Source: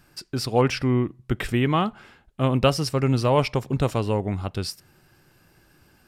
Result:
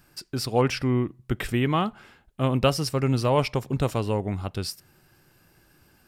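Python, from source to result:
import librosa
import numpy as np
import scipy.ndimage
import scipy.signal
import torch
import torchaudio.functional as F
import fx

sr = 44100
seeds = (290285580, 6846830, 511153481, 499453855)

y = fx.high_shelf(x, sr, hz=11000.0, db=7.0)
y = y * librosa.db_to_amplitude(-2.0)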